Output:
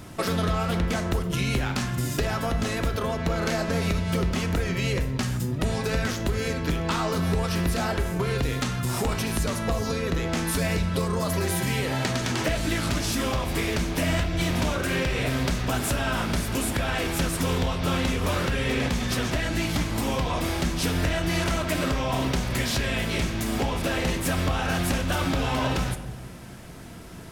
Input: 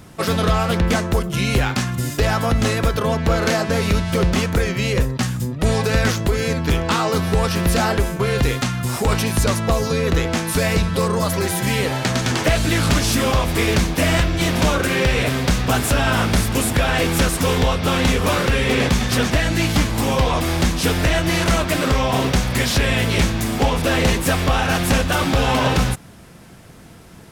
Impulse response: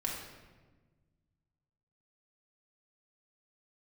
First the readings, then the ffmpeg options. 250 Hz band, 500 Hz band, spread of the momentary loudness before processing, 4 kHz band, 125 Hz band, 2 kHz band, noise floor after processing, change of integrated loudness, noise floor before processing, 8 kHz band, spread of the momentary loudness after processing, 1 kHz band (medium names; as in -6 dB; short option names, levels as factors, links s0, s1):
-6.5 dB, -8.0 dB, 3 LU, -7.5 dB, -7.0 dB, -7.5 dB, -37 dBFS, -7.5 dB, -42 dBFS, -7.5 dB, 2 LU, -8.0 dB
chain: -filter_complex "[0:a]acompressor=threshold=0.0631:ratio=6,asplit=2[s0][s1];[1:a]atrim=start_sample=2205,asetrate=52920,aresample=44100[s2];[s1][s2]afir=irnorm=-1:irlink=0,volume=0.596[s3];[s0][s3]amix=inputs=2:normalize=0,volume=0.708"